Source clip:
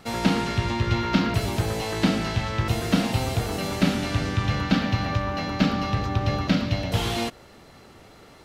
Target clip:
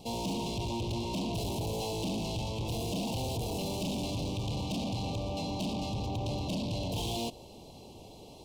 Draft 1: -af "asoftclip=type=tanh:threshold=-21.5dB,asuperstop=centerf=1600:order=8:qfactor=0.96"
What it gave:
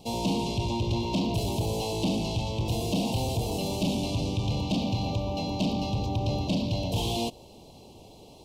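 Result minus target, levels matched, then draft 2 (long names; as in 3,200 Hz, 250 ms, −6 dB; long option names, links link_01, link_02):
soft clipping: distortion −5 dB
-af "asoftclip=type=tanh:threshold=-31dB,asuperstop=centerf=1600:order=8:qfactor=0.96"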